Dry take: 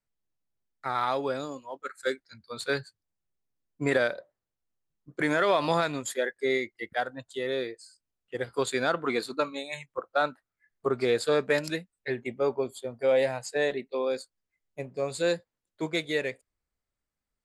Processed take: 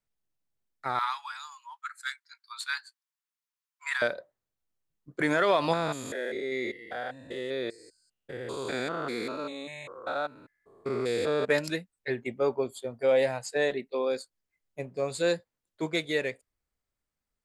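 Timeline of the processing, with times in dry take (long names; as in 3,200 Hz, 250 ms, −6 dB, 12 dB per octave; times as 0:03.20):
0:00.99–0:04.02: Butterworth high-pass 900 Hz 72 dB per octave
0:05.73–0:11.49: spectrum averaged block by block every 200 ms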